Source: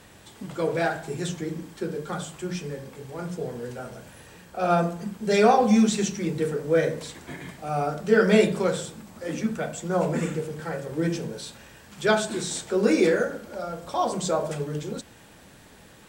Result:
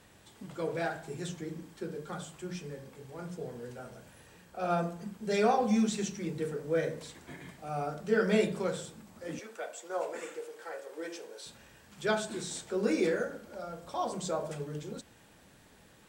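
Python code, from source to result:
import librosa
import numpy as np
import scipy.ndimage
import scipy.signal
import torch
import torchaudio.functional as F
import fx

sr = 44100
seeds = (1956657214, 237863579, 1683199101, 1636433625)

y = fx.highpass(x, sr, hz=400.0, slope=24, at=(9.39, 11.46))
y = y * 10.0 ** (-8.5 / 20.0)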